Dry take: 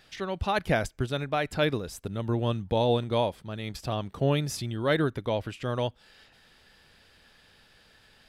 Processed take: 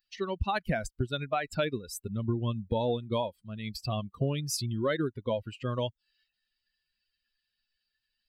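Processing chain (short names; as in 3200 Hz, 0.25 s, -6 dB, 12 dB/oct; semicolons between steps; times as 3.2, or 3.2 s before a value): per-bin expansion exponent 2; compressor 6:1, threshold -35 dBFS, peak gain reduction 12.5 dB; gain +8.5 dB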